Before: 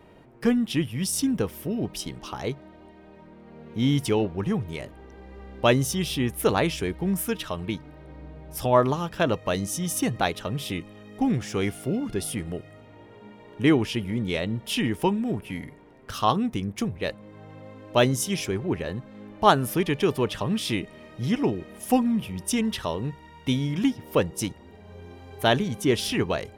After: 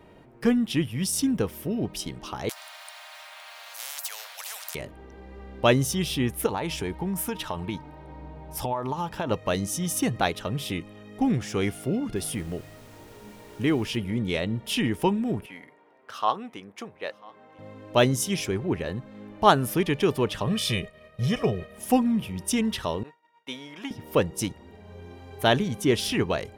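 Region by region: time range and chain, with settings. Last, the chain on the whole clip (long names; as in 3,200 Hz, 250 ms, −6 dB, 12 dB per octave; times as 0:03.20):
0:02.49–0:04.75: Butterworth high-pass 660 Hz 96 dB per octave + high-shelf EQ 6,900 Hz +10.5 dB + every bin compressed towards the loudest bin 10 to 1
0:06.46–0:09.31: parametric band 890 Hz +12 dB 0.29 octaves + downward compressor 12 to 1, threshold −24 dBFS
0:12.15–0:13.96: downward compressor 1.5 to 1, threshold −26 dBFS + background noise pink −53 dBFS
0:15.46–0:17.59: high-pass filter 800 Hz + spectral tilt −3.5 dB per octave + single-tap delay 992 ms −23.5 dB
0:20.47–0:21.78: downward expander −40 dBFS + comb filter 1.7 ms, depth 95%
0:23.03–0:23.91: high-pass filter 620 Hz + high-shelf EQ 3,000 Hz −9 dB + downward expander −44 dBFS
whole clip: no processing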